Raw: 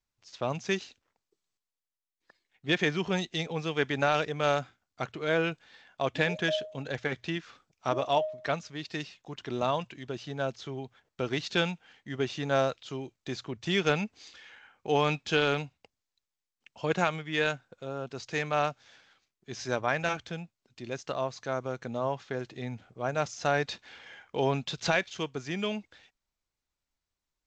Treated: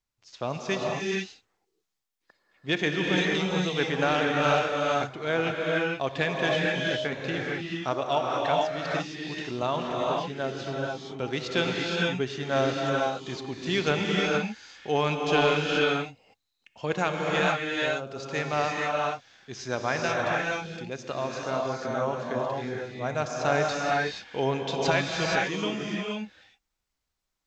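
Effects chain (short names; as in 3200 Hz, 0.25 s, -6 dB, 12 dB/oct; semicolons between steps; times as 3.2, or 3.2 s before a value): non-linear reverb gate 0.5 s rising, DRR -2.5 dB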